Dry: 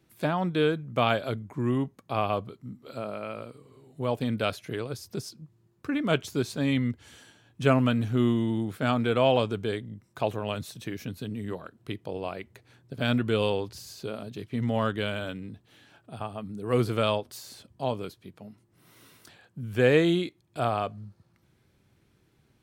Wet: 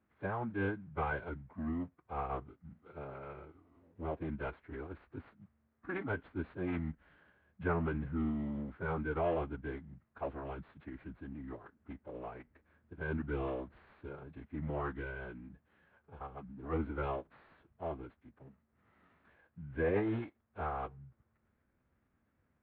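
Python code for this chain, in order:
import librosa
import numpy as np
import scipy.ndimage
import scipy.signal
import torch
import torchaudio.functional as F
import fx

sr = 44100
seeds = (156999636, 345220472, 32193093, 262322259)

y = fx.cvsd(x, sr, bps=32000)
y = fx.ladder_lowpass(y, sr, hz=2100.0, resonance_pct=30)
y = fx.pitch_keep_formants(y, sr, semitones=-7.5)
y = F.gain(torch.from_numpy(y), -3.5).numpy()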